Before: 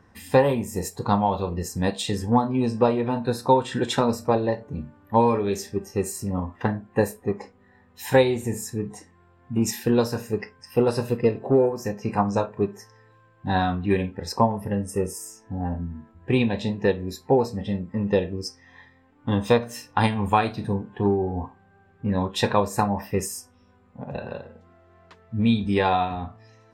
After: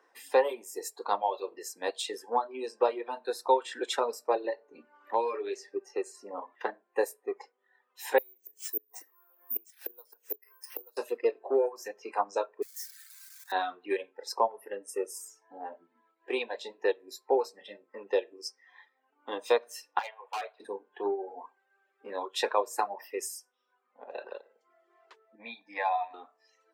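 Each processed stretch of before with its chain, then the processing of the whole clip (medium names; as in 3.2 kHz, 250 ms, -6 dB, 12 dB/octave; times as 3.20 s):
4.44–6.55 s: distance through air 90 m + band-stop 3.3 kHz, Q 9 + three bands compressed up and down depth 70%
8.18–10.97 s: inverted gate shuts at -20 dBFS, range -28 dB + careless resampling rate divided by 3×, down none, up zero stuff
12.62–13.52 s: zero-crossing glitches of -27.5 dBFS + steep high-pass 1.4 kHz + peaking EQ 2.9 kHz -13.5 dB 0.53 oct
19.99–20.60 s: steep high-pass 540 Hz + distance through air 400 m + hard clipper -26.5 dBFS
23.04–24.05 s: peaking EQ 570 Hz -3.5 dB 1.1 oct + hum notches 50/100/150/200/250 Hz
25.35–26.14 s: resonant high shelf 3.2 kHz -7 dB, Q 1.5 + static phaser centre 2 kHz, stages 8
whole clip: steep high-pass 360 Hz 36 dB/octave; reverb removal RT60 1.1 s; trim -5 dB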